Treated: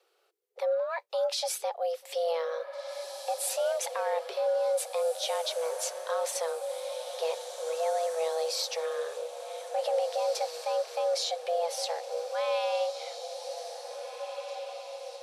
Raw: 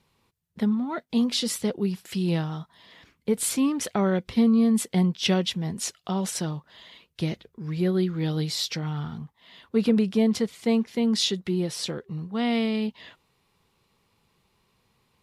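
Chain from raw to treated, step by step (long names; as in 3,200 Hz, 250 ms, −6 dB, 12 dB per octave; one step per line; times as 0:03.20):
brickwall limiter −19 dBFS, peak gain reduction 9 dB
frequency shifter +330 Hz
feedback delay with all-pass diffusion 1,906 ms, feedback 51%, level −8.5 dB
level −3 dB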